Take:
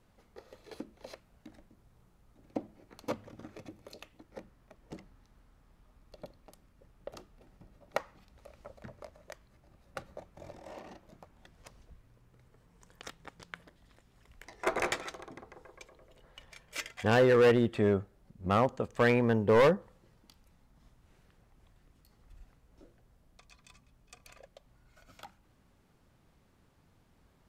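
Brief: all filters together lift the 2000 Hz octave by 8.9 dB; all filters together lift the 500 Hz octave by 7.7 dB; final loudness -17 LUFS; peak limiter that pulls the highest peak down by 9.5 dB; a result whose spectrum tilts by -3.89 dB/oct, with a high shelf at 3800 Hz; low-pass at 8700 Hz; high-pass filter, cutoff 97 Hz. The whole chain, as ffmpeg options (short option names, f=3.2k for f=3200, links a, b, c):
-af "highpass=97,lowpass=8.7k,equalizer=f=500:t=o:g=8,equalizer=f=2k:t=o:g=9,highshelf=f=3.8k:g=6.5,volume=13dB,alimiter=limit=-2dB:level=0:latency=1"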